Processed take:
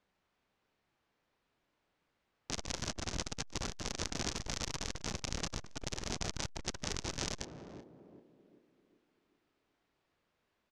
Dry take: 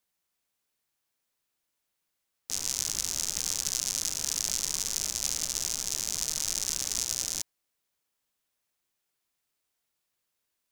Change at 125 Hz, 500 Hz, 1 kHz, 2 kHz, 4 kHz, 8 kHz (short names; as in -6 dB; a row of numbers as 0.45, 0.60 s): +6.5, +5.5, +3.0, -0.5, -8.5, -15.0 dB